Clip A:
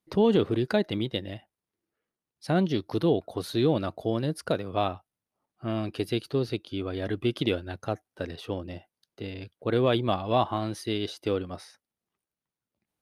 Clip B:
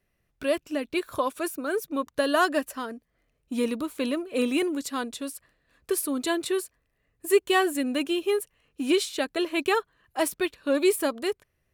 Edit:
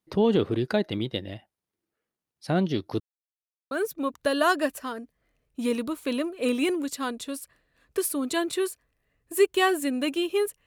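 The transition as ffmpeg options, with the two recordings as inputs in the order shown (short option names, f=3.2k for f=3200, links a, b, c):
-filter_complex "[0:a]apad=whole_dur=10.66,atrim=end=10.66,asplit=2[a][b];[a]atrim=end=3,asetpts=PTS-STARTPTS,afade=t=out:st=2.996:d=0.004:c=hsin[c];[b]atrim=start=3:end=3.71,asetpts=PTS-STARTPTS,volume=0[d];[1:a]atrim=start=1.64:end=8.59,asetpts=PTS-STARTPTS,afade=t=in:d=0.004:c=hsin[e];[c][d][e]concat=n=3:v=0:a=1"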